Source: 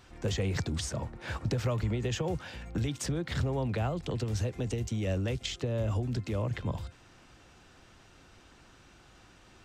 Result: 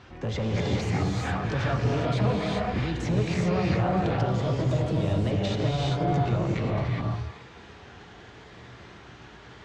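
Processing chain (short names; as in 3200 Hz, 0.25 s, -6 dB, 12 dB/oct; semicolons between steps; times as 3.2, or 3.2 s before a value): repeated pitch sweeps +6 st, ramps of 1.241 s; HPF 65 Hz; bell 6600 Hz +3 dB 0.52 oct; in parallel at -2 dB: limiter -28 dBFS, peak gain reduction 8.5 dB; on the sum: soft clip -27 dBFS, distortion -13 dB; air absorption 190 m; on a send: delay with a stepping band-pass 0.212 s, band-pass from 1100 Hz, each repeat 1.4 oct, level -10 dB; on the sum: non-linear reverb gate 0.43 s rising, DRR -3 dB; gain +3.5 dB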